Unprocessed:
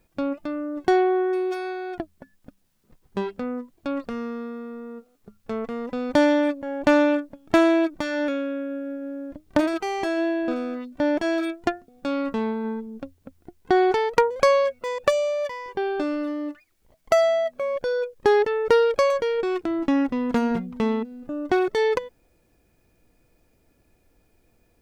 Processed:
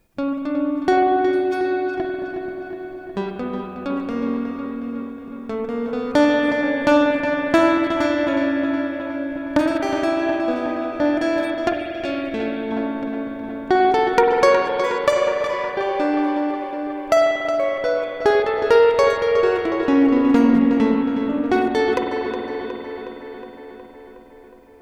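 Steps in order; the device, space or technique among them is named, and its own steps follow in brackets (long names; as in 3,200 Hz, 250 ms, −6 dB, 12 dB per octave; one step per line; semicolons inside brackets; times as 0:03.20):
dub delay into a spring reverb (feedback echo with a low-pass in the loop 365 ms, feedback 69%, low-pass 4,500 Hz, level −8 dB; spring reverb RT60 4 s, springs 47 ms, chirp 55 ms, DRR 1.5 dB)
0:11.73–0:12.72: graphic EQ with 15 bands 250 Hz −5 dB, 1,000 Hz −12 dB, 2,500 Hz +5 dB
level +2 dB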